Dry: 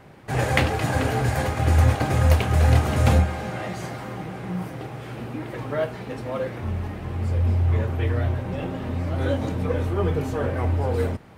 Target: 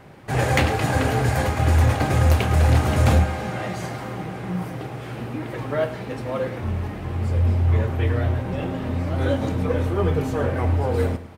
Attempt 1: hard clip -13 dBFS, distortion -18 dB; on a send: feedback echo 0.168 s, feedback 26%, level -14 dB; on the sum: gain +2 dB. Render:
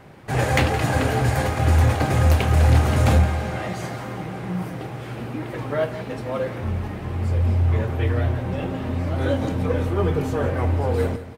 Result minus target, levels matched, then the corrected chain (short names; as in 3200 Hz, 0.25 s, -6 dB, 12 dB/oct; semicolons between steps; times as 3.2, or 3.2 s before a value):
echo 61 ms late
hard clip -13 dBFS, distortion -18 dB; on a send: feedback echo 0.107 s, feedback 26%, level -14 dB; on the sum: gain +2 dB